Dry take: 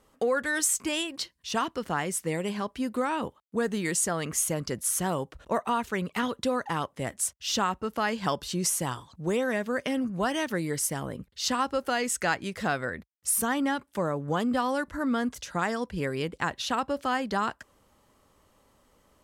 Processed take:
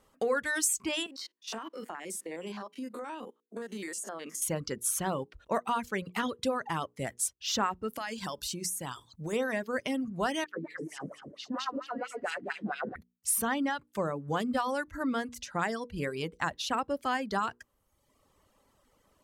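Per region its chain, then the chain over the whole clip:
0:01.06–0:04.42: spectrum averaged block by block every 50 ms + Butterworth high-pass 210 Hz + downward compressor 16 to 1, threshold −31 dBFS
0:07.88–0:09.33: high-shelf EQ 4,200 Hz +10 dB + downward compressor, threshold −29 dBFS
0:10.44–0:12.96: feedback delay that plays each chunk backwards 110 ms, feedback 54%, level −0.5 dB + LFO wah 4.4 Hz 220–3,100 Hz, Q 2.6
whole clip: mains-hum notches 60/120/180/240/300/360/420/480 Hz; reverb reduction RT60 0.94 s; level −2 dB

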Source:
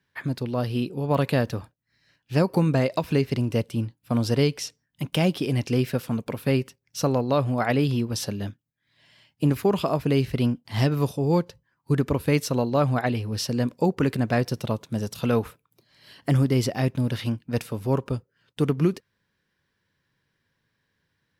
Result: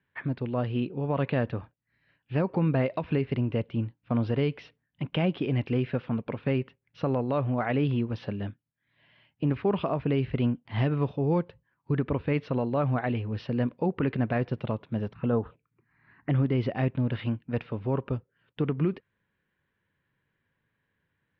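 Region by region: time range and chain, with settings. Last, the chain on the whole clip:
0:15.13–0:16.30: low-pass filter 3,100 Hz 24 dB per octave + phaser swept by the level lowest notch 510 Hz, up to 2,300 Hz, full sweep at −22 dBFS
whole clip: inverse Chebyshev low-pass filter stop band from 7,200 Hz, stop band 50 dB; brickwall limiter −15 dBFS; level −2.5 dB

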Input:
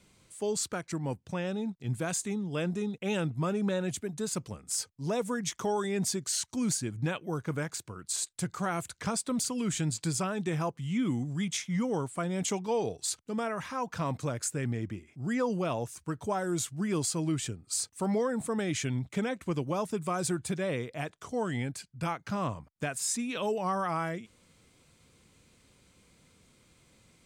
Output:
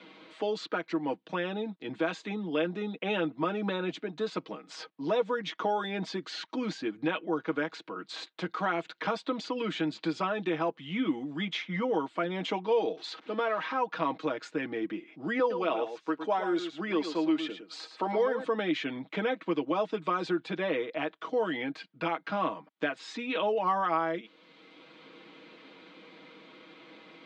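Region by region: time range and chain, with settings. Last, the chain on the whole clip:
0:12.97–0:13.72: converter with a step at zero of −46.5 dBFS + high-pass filter 270 Hz 6 dB per octave
0:15.39–0:18.44: high-pass filter 250 Hz + single-tap delay 111 ms −9.5 dB
whole clip: elliptic band-pass filter 250–3,700 Hz, stop band 50 dB; comb filter 6.3 ms, depth 72%; multiband upward and downward compressor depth 40%; level +2.5 dB

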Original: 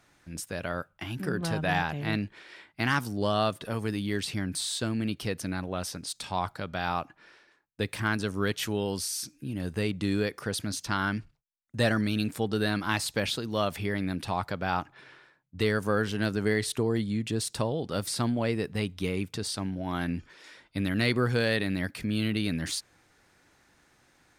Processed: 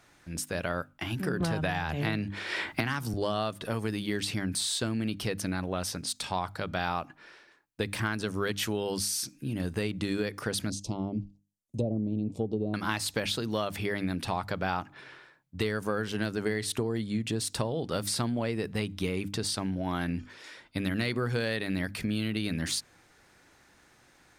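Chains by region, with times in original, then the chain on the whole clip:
0:01.40–0:03.14: parametric band 79 Hz +8.5 dB 0.58 octaves + multiband upward and downward compressor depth 100%
0:10.70–0:12.74: treble cut that deepens with the level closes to 690 Hz, closed at −21.5 dBFS + Butterworth band-reject 1,600 Hz, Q 0.72 + flat-topped bell 2,000 Hz −8 dB 2.9 octaves
whole clip: mains-hum notches 50/100/150/200/250/300 Hz; downward compressor, threshold −29 dBFS; level +3 dB

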